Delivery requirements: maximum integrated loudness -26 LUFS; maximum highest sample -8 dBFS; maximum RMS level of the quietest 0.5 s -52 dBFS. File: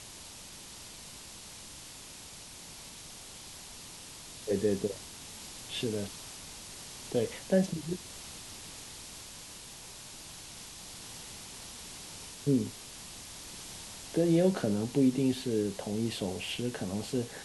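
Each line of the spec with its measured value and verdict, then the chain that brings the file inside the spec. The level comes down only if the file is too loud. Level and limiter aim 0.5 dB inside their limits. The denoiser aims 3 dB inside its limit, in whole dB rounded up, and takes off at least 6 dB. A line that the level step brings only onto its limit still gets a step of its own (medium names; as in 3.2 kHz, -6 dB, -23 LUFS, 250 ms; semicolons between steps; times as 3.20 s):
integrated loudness -35.5 LUFS: pass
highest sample -14.5 dBFS: pass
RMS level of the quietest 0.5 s -48 dBFS: fail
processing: noise reduction 7 dB, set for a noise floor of -48 dBFS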